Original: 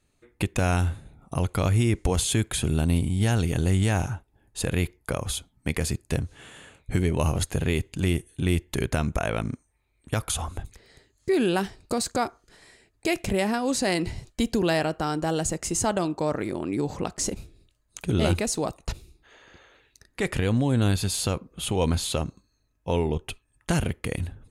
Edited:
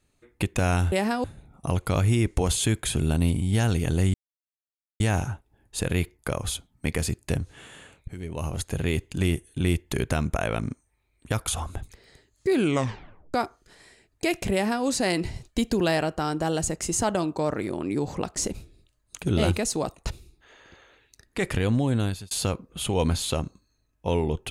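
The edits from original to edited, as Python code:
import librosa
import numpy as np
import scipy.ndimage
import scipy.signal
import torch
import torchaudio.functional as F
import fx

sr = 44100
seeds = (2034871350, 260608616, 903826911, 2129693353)

y = fx.edit(x, sr, fx.insert_silence(at_s=3.82, length_s=0.86),
    fx.fade_in_from(start_s=6.9, length_s=0.92, floor_db=-19.0),
    fx.tape_stop(start_s=11.4, length_s=0.76),
    fx.duplicate(start_s=13.35, length_s=0.32, to_s=0.92),
    fx.fade_out_span(start_s=20.53, length_s=0.6, curve='qsin'), tone=tone)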